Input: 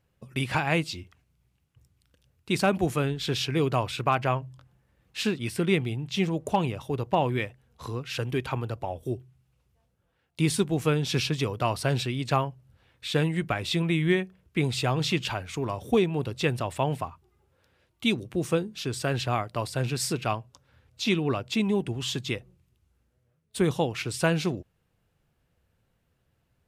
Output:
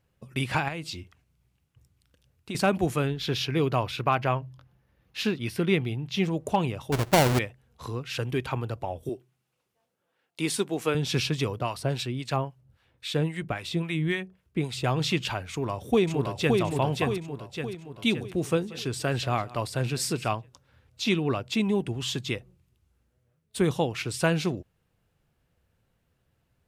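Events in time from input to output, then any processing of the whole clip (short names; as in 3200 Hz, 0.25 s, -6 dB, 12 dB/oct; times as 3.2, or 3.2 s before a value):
0.68–2.55 compressor 8:1, threshold -30 dBFS
3.07–6.25 bell 8000 Hz -10.5 dB 0.37 oct
6.92–7.39 half-waves squared off
9.09–10.95 HPF 280 Hz
11.59–14.84 harmonic tremolo 3.7 Hz, crossover 880 Hz
15.5–16.6 echo throw 0.57 s, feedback 50%, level -2.5 dB
18.26–20.29 echo 0.183 s -19.5 dB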